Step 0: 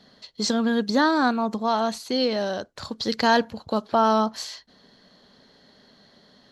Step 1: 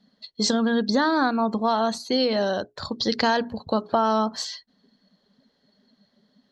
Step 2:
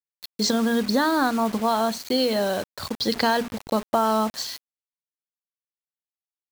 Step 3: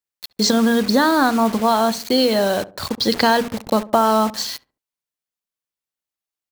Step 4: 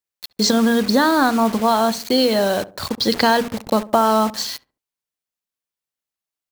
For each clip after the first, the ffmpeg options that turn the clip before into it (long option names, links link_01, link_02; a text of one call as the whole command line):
ffmpeg -i in.wav -af "bandreject=frequency=60:width_type=h:width=6,bandreject=frequency=120:width_type=h:width=6,bandreject=frequency=180:width_type=h:width=6,bandreject=frequency=240:width_type=h:width=6,bandreject=frequency=300:width_type=h:width=6,bandreject=frequency=360:width_type=h:width=6,bandreject=frequency=420:width_type=h:width=6,afftdn=noise_reduction=17:noise_floor=-44,acompressor=threshold=-21dB:ratio=6,volume=3.5dB" out.wav
ffmpeg -i in.wav -af "acrusher=bits=5:mix=0:aa=0.000001" out.wav
ffmpeg -i in.wav -filter_complex "[0:a]asplit=2[link_01][link_02];[link_02]adelay=70,lowpass=frequency=860:poles=1,volume=-16dB,asplit=2[link_03][link_04];[link_04]adelay=70,lowpass=frequency=860:poles=1,volume=0.39,asplit=2[link_05][link_06];[link_06]adelay=70,lowpass=frequency=860:poles=1,volume=0.39[link_07];[link_01][link_03][link_05][link_07]amix=inputs=4:normalize=0,volume=5.5dB" out.wav
ffmpeg -i in.wav -af "acrusher=bits=8:mode=log:mix=0:aa=0.000001" out.wav